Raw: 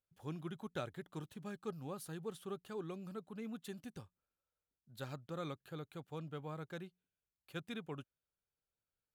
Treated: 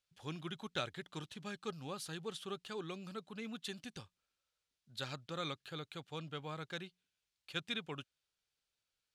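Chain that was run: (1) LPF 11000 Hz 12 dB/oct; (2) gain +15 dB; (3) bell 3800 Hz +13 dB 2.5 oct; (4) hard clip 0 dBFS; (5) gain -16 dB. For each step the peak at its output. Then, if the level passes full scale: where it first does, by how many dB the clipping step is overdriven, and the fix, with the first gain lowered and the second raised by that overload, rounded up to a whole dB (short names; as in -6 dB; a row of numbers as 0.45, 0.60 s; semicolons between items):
-27.5, -12.5, -5.0, -5.0, -21.0 dBFS; no overload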